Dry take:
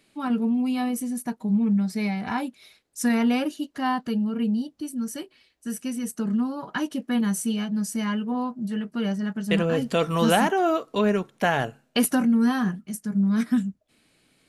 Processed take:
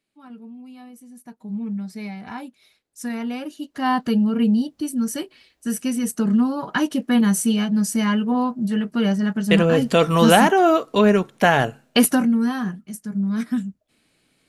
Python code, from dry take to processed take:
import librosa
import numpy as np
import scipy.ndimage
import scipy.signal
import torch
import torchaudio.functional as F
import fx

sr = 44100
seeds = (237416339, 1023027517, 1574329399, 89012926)

y = fx.gain(x, sr, db=fx.line((1.03, -16.5), (1.58, -6.0), (3.41, -6.0), (3.99, 6.5), (11.98, 6.5), (12.5, -1.0)))